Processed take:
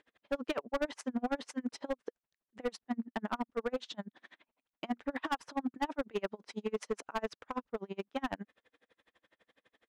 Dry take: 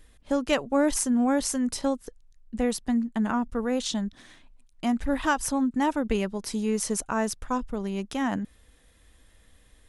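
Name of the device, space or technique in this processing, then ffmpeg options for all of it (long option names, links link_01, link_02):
helicopter radio: -af "highpass=350,lowpass=2700,aeval=exprs='val(0)*pow(10,-36*(0.5-0.5*cos(2*PI*12*n/s))/20)':channel_layout=same,asoftclip=type=hard:threshold=-29.5dB,volume=2.5dB"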